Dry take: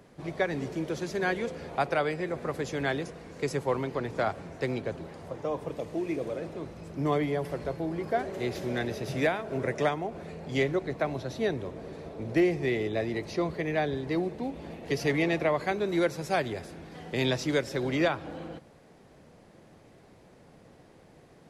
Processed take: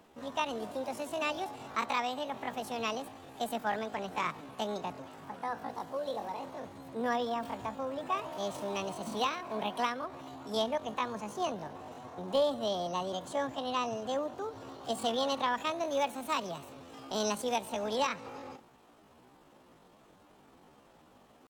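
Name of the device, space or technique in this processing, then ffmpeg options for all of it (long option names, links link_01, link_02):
chipmunk voice: -af "asetrate=72056,aresample=44100,atempo=0.612027,volume=-4.5dB"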